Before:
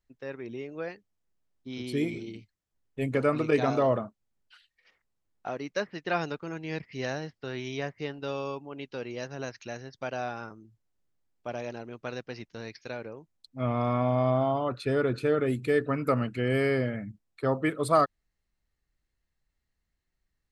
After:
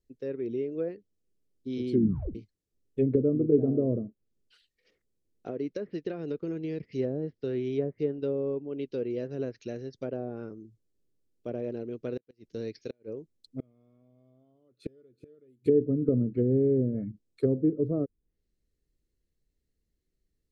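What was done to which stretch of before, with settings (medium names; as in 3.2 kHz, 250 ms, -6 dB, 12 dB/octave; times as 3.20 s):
1.92 s: tape stop 0.43 s
5.50–6.98 s: compression 4:1, threshold -32 dBFS
12.15–15.66 s: inverted gate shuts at -24 dBFS, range -38 dB
whole clip: tone controls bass -7 dB, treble +3 dB; low-pass that closes with the level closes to 340 Hz, closed at -27 dBFS; FFT filter 450 Hz 0 dB, 850 Hz -23 dB, 4.2 kHz -13 dB; trim +8.5 dB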